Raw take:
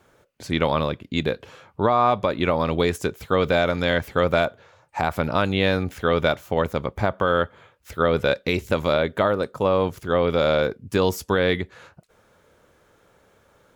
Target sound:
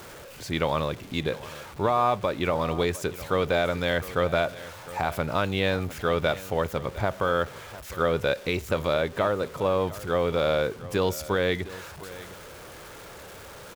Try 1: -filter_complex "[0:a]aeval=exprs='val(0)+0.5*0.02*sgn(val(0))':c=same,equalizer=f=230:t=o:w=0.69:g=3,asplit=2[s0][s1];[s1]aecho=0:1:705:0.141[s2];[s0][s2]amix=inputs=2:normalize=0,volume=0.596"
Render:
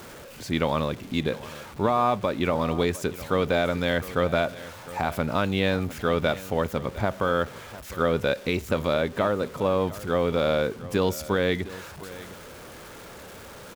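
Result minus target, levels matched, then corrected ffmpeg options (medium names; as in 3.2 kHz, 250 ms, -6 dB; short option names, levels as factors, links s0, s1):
250 Hz band +3.0 dB
-filter_complex "[0:a]aeval=exprs='val(0)+0.5*0.02*sgn(val(0))':c=same,equalizer=f=230:t=o:w=0.69:g=-3.5,asplit=2[s0][s1];[s1]aecho=0:1:705:0.141[s2];[s0][s2]amix=inputs=2:normalize=0,volume=0.596"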